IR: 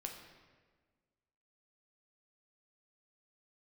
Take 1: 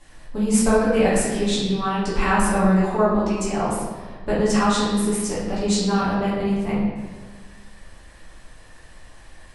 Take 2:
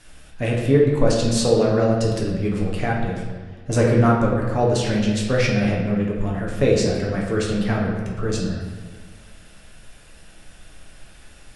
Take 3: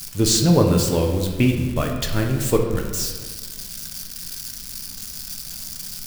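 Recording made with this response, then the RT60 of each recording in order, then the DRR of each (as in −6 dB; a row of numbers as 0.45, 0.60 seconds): 3; 1.5, 1.5, 1.5 seconds; −9.0, −3.5, 1.5 decibels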